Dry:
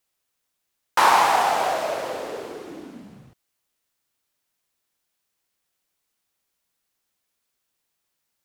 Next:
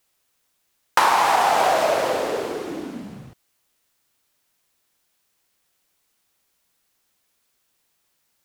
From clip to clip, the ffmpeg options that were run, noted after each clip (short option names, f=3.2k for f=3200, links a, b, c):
-af "acompressor=threshold=-21dB:ratio=10,volume=7.5dB"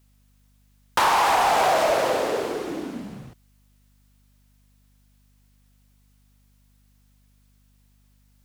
-af "asoftclip=type=hard:threshold=-15dB,aeval=exprs='val(0)+0.00112*(sin(2*PI*50*n/s)+sin(2*PI*2*50*n/s)/2+sin(2*PI*3*50*n/s)/3+sin(2*PI*4*50*n/s)/4+sin(2*PI*5*50*n/s)/5)':c=same"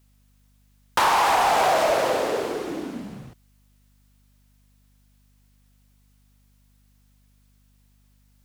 -af anull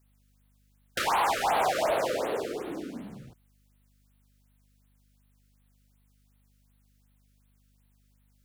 -af "afftfilt=real='re*(1-between(b*sr/1024,820*pow(6600/820,0.5+0.5*sin(2*PI*2.7*pts/sr))/1.41,820*pow(6600/820,0.5+0.5*sin(2*PI*2.7*pts/sr))*1.41))':imag='im*(1-between(b*sr/1024,820*pow(6600/820,0.5+0.5*sin(2*PI*2.7*pts/sr))/1.41,820*pow(6600/820,0.5+0.5*sin(2*PI*2.7*pts/sr))*1.41))':win_size=1024:overlap=0.75,volume=-5.5dB"